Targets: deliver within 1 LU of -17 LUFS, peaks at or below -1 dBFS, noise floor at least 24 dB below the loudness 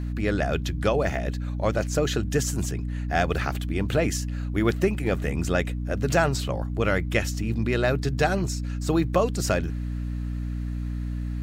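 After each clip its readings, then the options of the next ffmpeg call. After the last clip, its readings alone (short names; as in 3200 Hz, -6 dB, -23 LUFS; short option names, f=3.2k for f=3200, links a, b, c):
hum 60 Hz; harmonics up to 300 Hz; hum level -27 dBFS; loudness -26.0 LUFS; peak -8.0 dBFS; loudness target -17.0 LUFS
-> -af "bandreject=f=60:t=h:w=6,bandreject=f=120:t=h:w=6,bandreject=f=180:t=h:w=6,bandreject=f=240:t=h:w=6,bandreject=f=300:t=h:w=6"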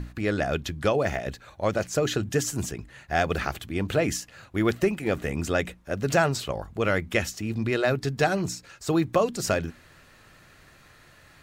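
hum none; loudness -27.0 LUFS; peak -9.0 dBFS; loudness target -17.0 LUFS
-> -af "volume=10dB,alimiter=limit=-1dB:level=0:latency=1"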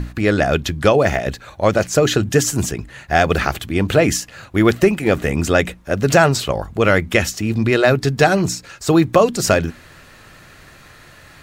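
loudness -17.0 LUFS; peak -1.0 dBFS; noise floor -45 dBFS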